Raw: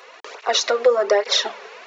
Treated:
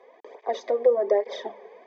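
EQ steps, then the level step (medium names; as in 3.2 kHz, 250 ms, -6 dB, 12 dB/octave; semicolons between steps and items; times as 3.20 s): boxcar filter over 32 samples; -1.5 dB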